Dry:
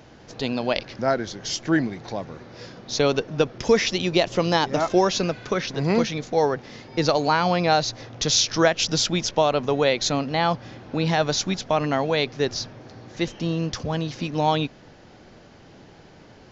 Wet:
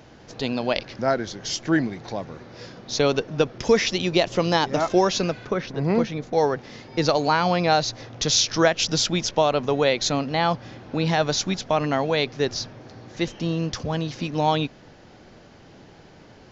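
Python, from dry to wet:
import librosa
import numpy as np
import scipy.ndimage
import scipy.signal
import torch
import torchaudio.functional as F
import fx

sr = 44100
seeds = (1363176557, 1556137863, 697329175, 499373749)

y = fx.high_shelf(x, sr, hz=2600.0, db=-12.0, at=(5.45, 6.33))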